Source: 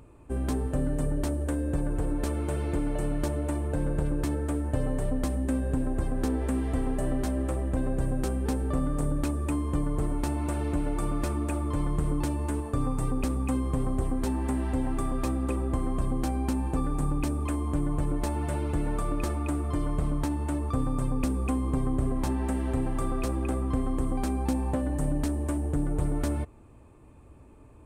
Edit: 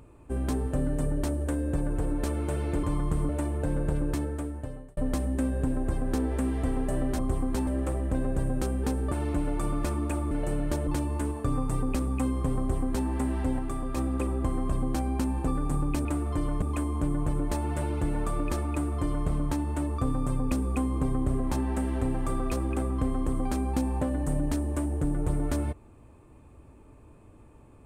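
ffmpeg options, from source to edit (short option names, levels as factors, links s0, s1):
-filter_complex "[0:a]asplit=13[s0][s1][s2][s3][s4][s5][s6][s7][s8][s9][s10][s11][s12];[s0]atrim=end=2.832[s13];[s1]atrim=start=11.698:end=12.162[s14];[s2]atrim=start=3.388:end=5.07,asetpts=PTS-STARTPTS,afade=t=out:st=0.802:d=0.88[s15];[s3]atrim=start=5.07:end=7.292,asetpts=PTS-STARTPTS,afade=t=in:d=0.004:c=hsin[s16];[s4]atrim=start=13.878:end=14.362[s17];[s5]atrim=start=7.288:end=8.742[s18];[s6]atrim=start=10.508:end=11.702[s19];[s7]atrim=start=2.828:end=3.392[s20];[s8]atrim=start=12.158:end=14.882[s21];[s9]atrim=start=14.878:end=15.262,asetpts=PTS-STARTPTS,volume=0.708[s22];[s10]atrim=start=15.258:end=17.342[s23];[s11]atrim=start=19.428:end=20.002[s24];[s12]atrim=start=17.338[s25];[s13][s14]acrossfade=d=0.004:c1=hsin:c2=hsin[s26];[s15][s16]concat=n=2:v=0:a=1[s27];[s26][s27]acrossfade=d=0.004:c1=hsin:c2=hsin[s28];[s28][s17]acrossfade=d=0.004:c1=hsin:c2=hsin[s29];[s29][s18]acrossfade=d=0.004:c1=hsin:c2=hsin[s30];[s30][s19]acrossfade=d=0.004:c1=hsin:c2=hsin[s31];[s31][s20]acrossfade=d=0.004:c1=hsin:c2=hsin[s32];[s32][s21]acrossfade=d=0.004:c1=hsin:c2=hsin[s33];[s33][s22]acrossfade=d=0.004:c1=hsin:c2=hsin[s34];[s34][s23]acrossfade=d=0.004:c1=hsin:c2=hsin[s35];[s35][s24]acrossfade=d=0.004:c1=hsin:c2=hsin[s36];[s36][s25]acrossfade=d=0.004:c1=hsin:c2=hsin"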